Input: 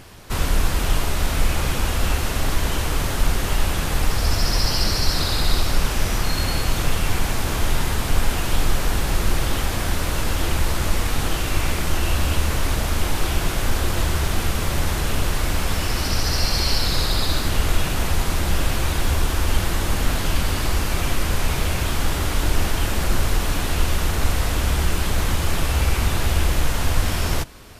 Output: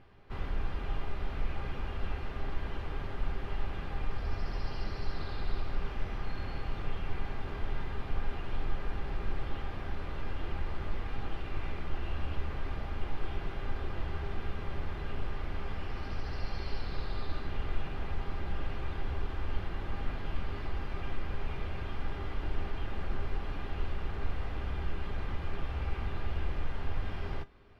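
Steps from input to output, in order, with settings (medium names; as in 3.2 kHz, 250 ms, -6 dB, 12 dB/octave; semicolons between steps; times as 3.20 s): distance through air 360 m; band-stop 3.8 kHz, Q 30; feedback comb 400 Hz, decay 0.16 s, harmonics all, mix 70%; trim -6 dB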